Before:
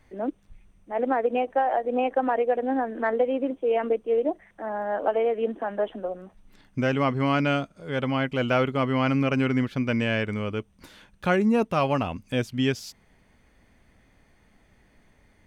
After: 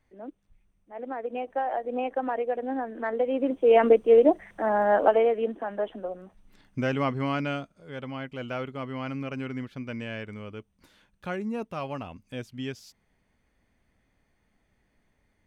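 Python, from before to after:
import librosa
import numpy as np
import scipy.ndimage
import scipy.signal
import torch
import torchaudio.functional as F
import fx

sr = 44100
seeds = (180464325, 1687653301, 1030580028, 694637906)

y = fx.gain(x, sr, db=fx.line((0.99, -12.0), (1.63, -5.0), (3.1, -5.0), (3.78, 6.5), (4.94, 6.5), (5.54, -3.0), (7.05, -3.0), (8.0, -10.5)))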